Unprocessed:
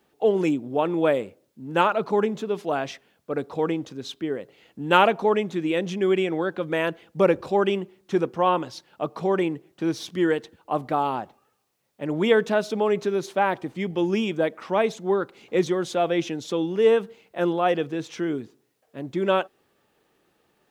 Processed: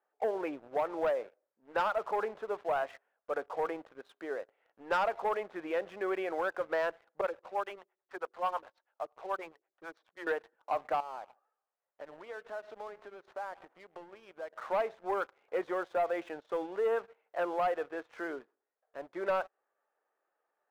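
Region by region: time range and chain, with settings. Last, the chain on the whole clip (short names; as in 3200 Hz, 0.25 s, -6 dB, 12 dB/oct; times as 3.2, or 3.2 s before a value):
7.21–10.27 HPF 600 Hz 6 dB/oct + harmonic tremolo 9.2 Hz, depth 100%, crossover 430 Hz
11–14.67 compressor 5:1, threshold -36 dBFS + echo 0.146 s -19.5 dB
whole clip: Chebyshev band-pass 590–1600 Hz, order 2; compressor 2.5:1, threshold -27 dBFS; sample leveller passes 2; gain -7.5 dB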